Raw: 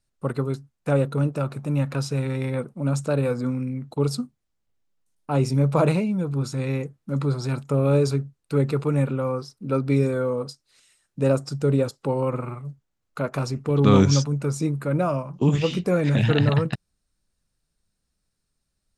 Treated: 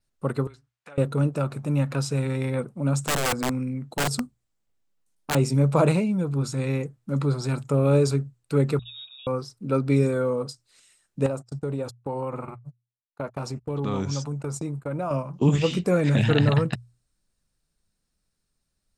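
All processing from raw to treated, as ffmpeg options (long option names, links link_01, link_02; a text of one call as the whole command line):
ffmpeg -i in.wav -filter_complex "[0:a]asettb=1/sr,asplit=3[link_01][link_02][link_03];[link_01]atrim=end=0.474[link_04];[link_02]atrim=start=0.47:end=0.98,asetpts=PTS-STARTPTS,afade=type=in:duration=0.004:curve=qsin,afade=type=out:start_time=0.506:duration=0.004:curve=qsin,acompressor=threshold=-30dB:ratio=16:attack=3.2:release=140:knee=1:detection=peak,bandpass=frequency=2400:width_type=q:width=0.65[link_05];[link_03]atrim=start=0.976[link_06];[link_04][link_05]acrossfade=duration=0.004:curve1=hsin:curve2=qsin[link_07];[link_07][link_06]acrossfade=duration=0.004:curve1=qsin:curve2=hsin,asettb=1/sr,asplit=3[link_08][link_09][link_10];[link_08]atrim=end=3.054[link_11];[link_09]atrim=start=3.05:end=5.35,asetpts=PTS-STARTPTS,afade=type=in:duration=0.004:curve=qsin,afade=type=out:start_time=2.296:duration=0.004:curve=qsin,equalizer=frequency=78:width_type=o:width=0.69:gain=-5.5,aeval=exprs='(mod(8.91*val(0)+1,2)-1)/8.91':channel_layout=same[link_12];[link_10]atrim=start=5.346[link_13];[link_11][link_12]acrossfade=duration=0.004:curve1=hsin:curve2=qsin[link_14];[link_14][link_13]acrossfade=duration=0.004:curve1=qsin:curve2=hsin,asettb=1/sr,asplit=3[link_15][link_16][link_17];[link_15]atrim=end=8.794[link_18];[link_16]atrim=start=8.79:end=9.27,asetpts=PTS-STARTPTS,afade=type=in:duration=0.004:curve=qsin,afade=type=out:start_time=0.476:duration=0.004:curve=qsin,equalizer=frequency=2000:width=0.57:gain=-10,lowpass=frequency=3300:width_type=q:width=0.5098,lowpass=frequency=3300:width_type=q:width=0.6013,lowpass=frequency=3300:width_type=q:width=0.9,lowpass=frequency=3300:width_type=q:width=2.563,afreqshift=-3900,asplit=3[link_19][link_20][link_21];[link_19]bandpass=frequency=730:width_type=q:width=8,volume=0dB[link_22];[link_20]bandpass=frequency=1090:width_type=q:width=8,volume=-6dB[link_23];[link_21]bandpass=frequency=2440:width_type=q:width=8,volume=-9dB[link_24];[link_22][link_23][link_24]amix=inputs=3:normalize=0[link_25];[link_17]atrim=start=9.266[link_26];[link_18][link_25]acrossfade=duration=0.004:curve1=hsin:curve2=qsin[link_27];[link_27][link_26]acrossfade=duration=0.004:curve1=qsin:curve2=hsin,asettb=1/sr,asplit=3[link_28][link_29][link_30];[link_28]atrim=end=11.264[link_31];[link_29]atrim=start=11.26:end=15.11,asetpts=PTS-STARTPTS,afade=type=in:duration=0.004:curve=qsin,afade=type=out:start_time=3.846:duration=0.004:curve=qsin,agate=range=-38dB:threshold=-32dB:ratio=16:release=100:detection=peak,equalizer=frequency=830:width_type=o:width=0.81:gain=6.5,acompressor=threshold=-29dB:ratio=2.5:attack=3.2:release=140:knee=1:detection=peak[link_32];[link_30]atrim=start=15.106[link_33];[link_31][link_32]acrossfade=duration=0.004:curve1=hsin:curve2=qsin[link_34];[link_34][link_33]acrossfade=duration=0.004:curve1=qsin:curve2=hsin,bandreject=frequency=60:width_type=h:width=6,bandreject=frequency=120:width_type=h:width=6,adynamicequalizer=threshold=0.00126:dfrequency=7800:dqfactor=4:tfrequency=7800:tqfactor=4:attack=5:release=100:ratio=0.375:range=3.5:mode=boostabove:tftype=bell" out.wav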